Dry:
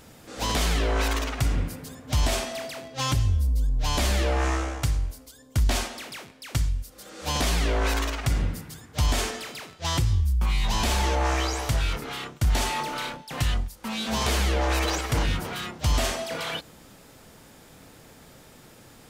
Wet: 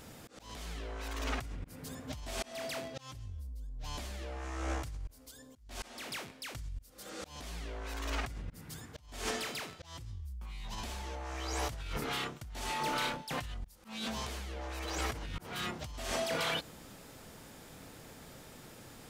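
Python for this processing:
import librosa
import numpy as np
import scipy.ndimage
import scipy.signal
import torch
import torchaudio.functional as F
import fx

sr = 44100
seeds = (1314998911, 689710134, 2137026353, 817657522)

y = fx.over_compress(x, sr, threshold_db=-31.0, ratio=-1.0)
y = fx.auto_swell(y, sr, attack_ms=311.0)
y = y * 10.0 ** (-7.5 / 20.0)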